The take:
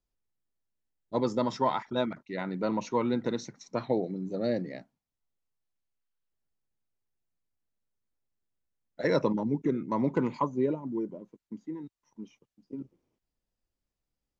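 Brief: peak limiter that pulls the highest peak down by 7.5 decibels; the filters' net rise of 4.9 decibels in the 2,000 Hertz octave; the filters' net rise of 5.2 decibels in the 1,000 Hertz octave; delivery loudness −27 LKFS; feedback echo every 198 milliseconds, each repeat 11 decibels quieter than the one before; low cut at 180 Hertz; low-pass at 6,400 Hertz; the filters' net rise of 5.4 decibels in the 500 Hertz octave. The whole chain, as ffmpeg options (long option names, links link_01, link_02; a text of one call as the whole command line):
ffmpeg -i in.wav -af "highpass=180,lowpass=6400,equalizer=frequency=500:width_type=o:gain=5.5,equalizer=frequency=1000:width_type=o:gain=3.5,equalizer=frequency=2000:width_type=o:gain=4.5,alimiter=limit=-16dB:level=0:latency=1,aecho=1:1:198|396|594:0.282|0.0789|0.0221,volume=2dB" out.wav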